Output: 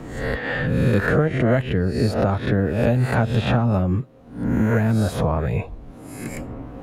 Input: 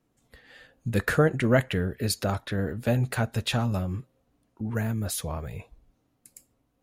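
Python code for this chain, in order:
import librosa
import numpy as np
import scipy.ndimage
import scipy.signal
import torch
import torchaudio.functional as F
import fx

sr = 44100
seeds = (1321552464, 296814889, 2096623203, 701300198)

y = fx.spec_swells(x, sr, rise_s=0.54)
y = fx.lowpass(y, sr, hz=1200.0, slope=6)
y = fx.band_squash(y, sr, depth_pct=100)
y = y * 10.0 ** (6.5 / 20.0)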